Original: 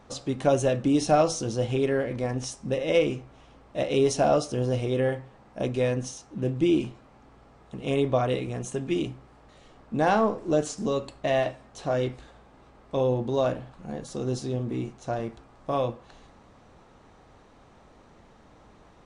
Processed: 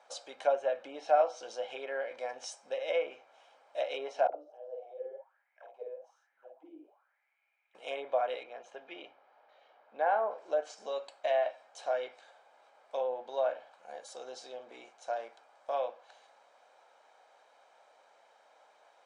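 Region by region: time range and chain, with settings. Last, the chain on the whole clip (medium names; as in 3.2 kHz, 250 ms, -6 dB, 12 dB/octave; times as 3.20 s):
4.27–7.75 s: auto-wah 300–2500 Hz, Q 9.8, down, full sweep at -19 dBFS + doubling 50 ms -3 dB
8.43–10.31 s: high-pass 130 Hz + distance through air 260 m
whole clip: low-pass that closes with the level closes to 1.9 kHz, closed at -19 dBFS; elliptic band-pass 520–9500 Hz, stop band 70 dB; comb 1.3 ms, depth 44%; trim -5.5 dB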